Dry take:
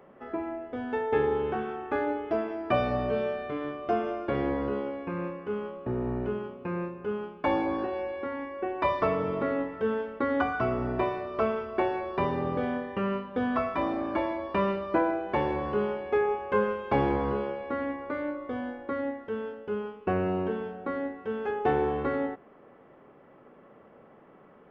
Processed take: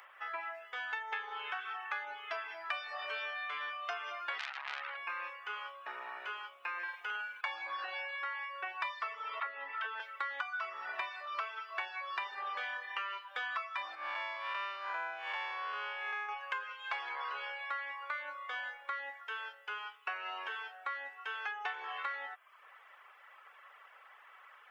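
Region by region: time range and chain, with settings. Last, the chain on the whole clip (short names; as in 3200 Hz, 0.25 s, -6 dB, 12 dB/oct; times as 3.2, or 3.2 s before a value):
4.38–4.97 doubler 16 ms -14 dB + core saturation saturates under 2100 Hz
6.78–7.41 comb 6.2 ms, depth 42% + flutter echo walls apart 9 m, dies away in 1.1 s
9.4–10 air absorption 180 m + dispersion lows, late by 69 ms, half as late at 480 Hz + three-band squash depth 100%
13.95–16.29 time blur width 0.191 s + low shelf 150 Hz +8.5 dB
whole clip: Bessel high-pass 1800 Hz, order 4; reverb removal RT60 0.65 s; compressor 6:1, threshold -49 dBFS; gain +13 dB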